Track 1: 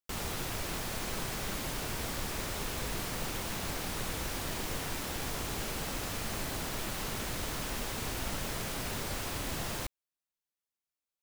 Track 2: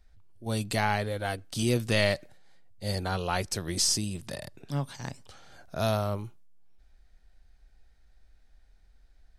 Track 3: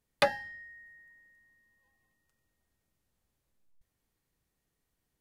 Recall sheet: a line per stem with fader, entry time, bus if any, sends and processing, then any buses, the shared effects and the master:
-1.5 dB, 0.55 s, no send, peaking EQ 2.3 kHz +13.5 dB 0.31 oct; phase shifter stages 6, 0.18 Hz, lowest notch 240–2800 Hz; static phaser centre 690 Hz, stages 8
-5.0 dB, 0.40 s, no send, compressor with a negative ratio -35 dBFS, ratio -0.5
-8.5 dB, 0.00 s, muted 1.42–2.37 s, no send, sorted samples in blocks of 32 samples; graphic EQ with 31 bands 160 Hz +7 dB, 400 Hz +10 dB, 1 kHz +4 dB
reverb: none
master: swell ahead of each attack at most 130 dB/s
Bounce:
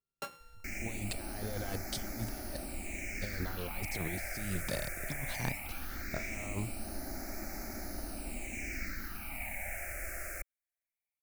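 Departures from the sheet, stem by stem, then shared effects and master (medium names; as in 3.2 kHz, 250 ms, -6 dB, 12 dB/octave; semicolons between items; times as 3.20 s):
stem 3 -8.5 dB -> -17.5 dB; master: missing swell ahead of each attack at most 130 dB/s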